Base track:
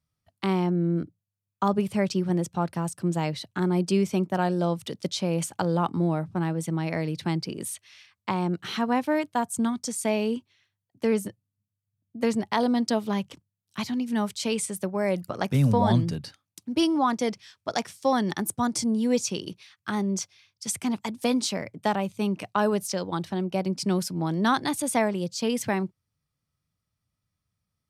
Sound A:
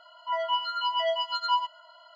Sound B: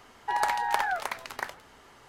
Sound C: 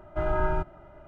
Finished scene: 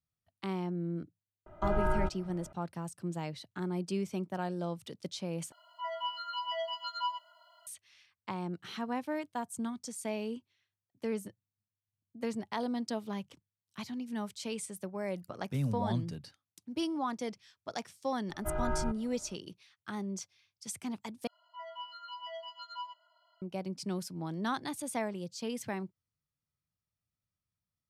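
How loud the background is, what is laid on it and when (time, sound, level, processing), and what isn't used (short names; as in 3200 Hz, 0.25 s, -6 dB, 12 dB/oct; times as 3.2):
base track -11 dB
1.46 add C -4 dB
5.52 replace with A -9 dB + requantised 12-bit, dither none
18.29 add C -7.5 dB
21.27 replace with A -16.5 dB
not used: B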